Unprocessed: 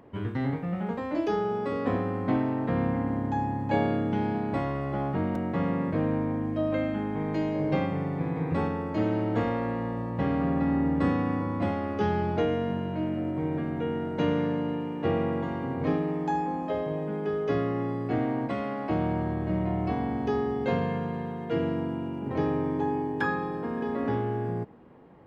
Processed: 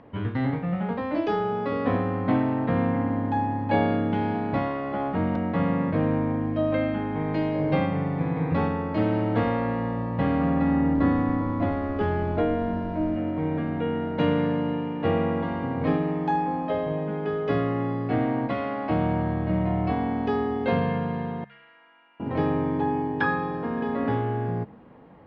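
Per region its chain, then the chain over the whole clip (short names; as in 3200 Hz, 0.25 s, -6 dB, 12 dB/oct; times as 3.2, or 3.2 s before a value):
10.93–13.15 high shelf 2600 Hz -11.5 dB + comb 3 ms, depth 36% + added noise brown -46 dBFS
21.44–22.2 ladder band-pass 2200 Hz, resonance 30% + compressor 2:1, threshold -55 dBFS
whole clip: LPF 4500 Hz 24 dB/oct; bell 370 Hz -7.5 dB 0.27 oct; de-hum 68.85 Hz, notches 3; gain +4 dB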